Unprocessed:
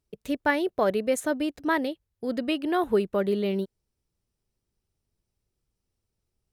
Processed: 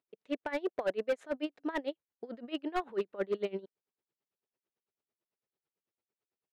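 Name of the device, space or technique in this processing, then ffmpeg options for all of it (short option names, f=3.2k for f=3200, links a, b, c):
helicopter radio: -af "highpass=350,lowpass=2.9k,aeval=exprs='val(0)*pow(10,-23*(0.5-0.5*cos(2*PI*9*n/s))/20)':c=same,asoftclip=type=hard:threshold=-25dB"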